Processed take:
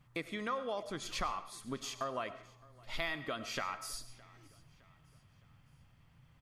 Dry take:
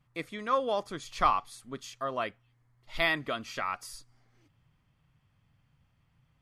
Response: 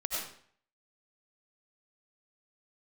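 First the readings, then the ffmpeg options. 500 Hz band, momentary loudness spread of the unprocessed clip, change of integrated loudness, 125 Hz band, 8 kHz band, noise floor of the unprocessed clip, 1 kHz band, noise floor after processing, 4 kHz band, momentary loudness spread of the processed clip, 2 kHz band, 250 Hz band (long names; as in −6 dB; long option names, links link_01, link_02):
−7.0 dB, 16 LU, −8.0 dB, −3.5 dB, +1.5 dB, −71 dBFS, −9.5 dB, −66 dBFS, −4.0 dB, 17 LU, −7.5 dB, −3.5 dB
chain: -filter_complex "[0:a]acompressor=threshold=-41dB:ratio=5,aecho=1:1:613|1226|1839:0.0631|0.029|0.0134,asplit=2[link_01][link_02];[1:a]atrim=start_sample=2205[link_03];[link_02][link_03]afir=irnorm=-1:irlink=0,volume=-14.5dB[link_04];[link_01][link_04]amix=inputs=2:normalize=0,volume=3.5dB"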